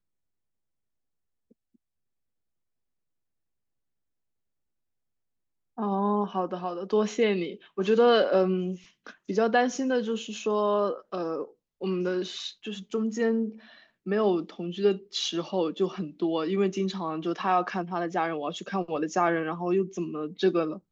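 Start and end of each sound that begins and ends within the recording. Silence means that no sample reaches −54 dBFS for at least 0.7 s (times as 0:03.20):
0:01.51–0:01.76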